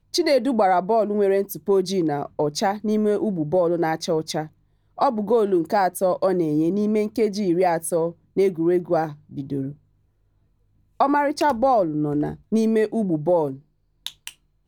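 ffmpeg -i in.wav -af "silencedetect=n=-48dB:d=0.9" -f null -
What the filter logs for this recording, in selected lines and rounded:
silence_start: 9.77
silence_end: 11.00 | silence_duration: 1.23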